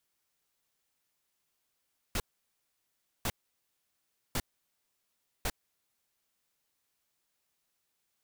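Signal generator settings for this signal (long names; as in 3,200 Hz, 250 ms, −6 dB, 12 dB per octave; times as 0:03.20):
noise bursts pink, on 0.05 s, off 1.05 s, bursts 4, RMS −31.5 dBFS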